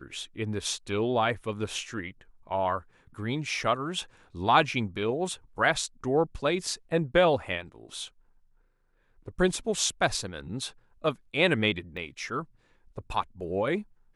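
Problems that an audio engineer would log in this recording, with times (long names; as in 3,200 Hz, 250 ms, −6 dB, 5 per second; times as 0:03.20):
0:10.17: drop-out 2.4 ms
0:11.97: drop-out 3.5 ms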